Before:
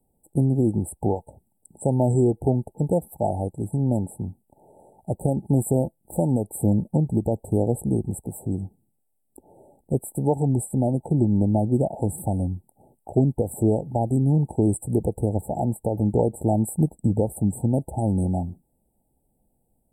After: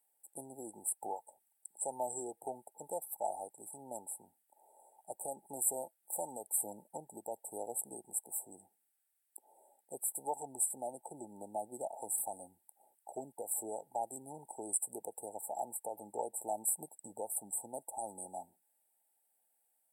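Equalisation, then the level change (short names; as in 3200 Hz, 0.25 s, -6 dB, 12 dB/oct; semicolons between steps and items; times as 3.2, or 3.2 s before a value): resonant high-pass 1600 Hz, resonance Q 2.4; +1.5 dB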